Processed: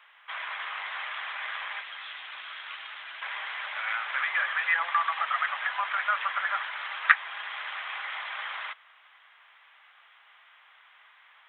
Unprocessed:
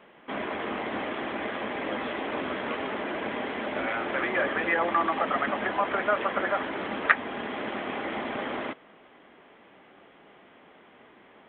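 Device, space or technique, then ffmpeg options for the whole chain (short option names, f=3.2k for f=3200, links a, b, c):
headphones lying on a table: -filter_complex "[0:a]highpass=f=1.1k:w=0.5412,highpass=f=1.1k:w=1.3066,equalizer=f=3.7k:t=o:w=0.21:g=4.5,asettb=1/sr,asplit=3[a][b][c];[a]atrim=end=1.814[d];[b]atrim=start=1.81:end=3.22,asetpts=PTS-STARTPTS,afade=t=in:d=0.004:c=qsin,afade=t=out:st=1.406:d=0.004:c=qsin,equalizer=f=125:t=o:w=1:g=4,equalizer=f=250:t=o:w=1:g=4,equalizer=f=500:t=o:w=1:g=-10,equalizer=f=1k:t=o:w=1:g=-7,equalizer=f=2k:t=o:w=1:g=-5[e];[c]atrim=start=3.216[f];[d][e]acrossfade=d=0.004:c1=hsin:c2=qsin[g];[g][f]acrossfade=d=0.004:c1=qsin:c2=hsin,volume=2dB"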